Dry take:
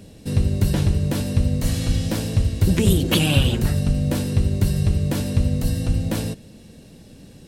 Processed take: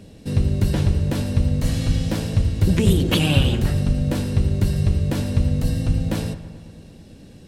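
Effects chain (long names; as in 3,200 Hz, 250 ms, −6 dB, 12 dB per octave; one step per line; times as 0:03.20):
high-shelf EQ 7,500 Hz −7.5 dB
feedback echo with a low-pass in the loop 110 ms, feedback 71%, low-pass 3,100 Hz, level −13.5 dB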